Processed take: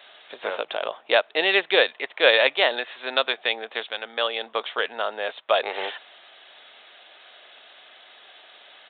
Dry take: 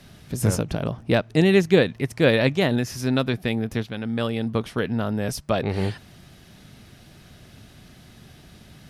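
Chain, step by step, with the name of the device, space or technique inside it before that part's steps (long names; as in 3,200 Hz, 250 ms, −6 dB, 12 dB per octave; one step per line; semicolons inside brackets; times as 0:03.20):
musical greeting card (downsampling to 8,000 Hz; high-pass filter 560 Hz 24 dB per octave; parametric band 3,600 Hz +6 dB 0.54 octaves)
level +5 dB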